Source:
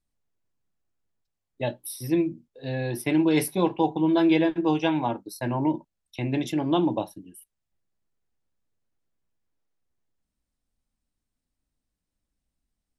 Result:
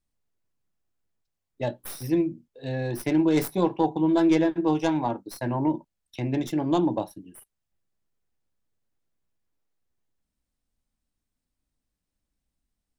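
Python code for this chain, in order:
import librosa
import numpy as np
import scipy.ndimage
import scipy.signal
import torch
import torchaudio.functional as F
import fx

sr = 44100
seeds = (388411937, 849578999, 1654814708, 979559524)

y = fx.tracing_dist(x, sr, depth_ms=0.12)
y = fx.dynamic_eq(y, sr, hz=2800.0, q=1.5, threshold_db=-47.0, ratio=4.0, max_db=-7)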